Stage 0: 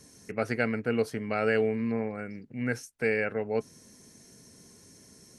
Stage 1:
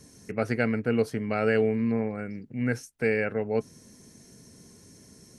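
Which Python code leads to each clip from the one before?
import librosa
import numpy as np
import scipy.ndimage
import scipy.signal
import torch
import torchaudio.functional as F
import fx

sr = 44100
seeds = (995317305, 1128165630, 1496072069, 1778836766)

y = fx.low_shelf(x, sr, hz=350.0, db=5.5)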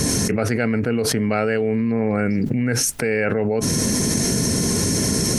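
y = fx.env_flatten(x, sr, amount_pct=100)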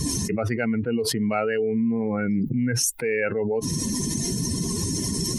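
y = fx.bin_expand(x, sr, power=2.0)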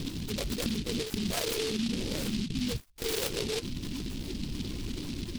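y = fx.lpc_vocoder(x, sr, seeds[0], excitation='whisper', order=16)
y = fx.noise_mod_delay(y, sr, seeds[1], noise_hz=3600.0, depth_ms=0.23)
y = y * 10.0 ** (-8.0 / 20.0)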